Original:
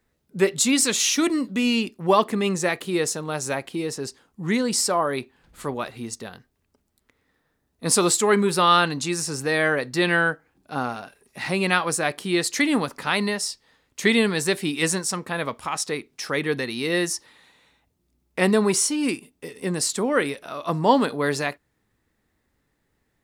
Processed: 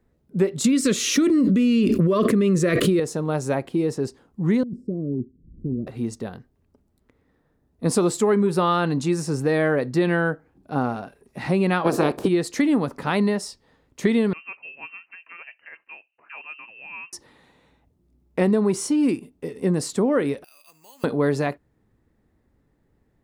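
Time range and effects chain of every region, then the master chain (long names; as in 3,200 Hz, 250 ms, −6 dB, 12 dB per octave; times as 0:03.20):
0:00.64–0:03.00: Butterworth band-reject 820 Hz, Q 1.6 + envelope flattener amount 100%
0:04.63–0:05.87: inverse Chebyshev low-pass filter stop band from 830 Hz, stop band 50 dB + compressor whose output falls as the input rises −33 dBFS
0:11.84–0:12.27: ceiling on every frequency bin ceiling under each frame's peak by 22 dB + parametric band 380 Hz +13.5 dB 2.9 octaves + notch filter 2,000 Hz, Q 11
0:14.33–0:17.13: voice inversion scrambler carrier 2,900 Hz + first difference
0:20.44–0:21.04: resonant band-pass 2,600 Hz, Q 9.8 + downward compressor 2.5 to 1, threshold −51 dBFS + bad sample-rate conversion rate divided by 6×, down none, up zero stuff
whole clip: tilt shelving filter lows +8 dB, about 1,100 Hz; downward compressor, threshold −16 dBFS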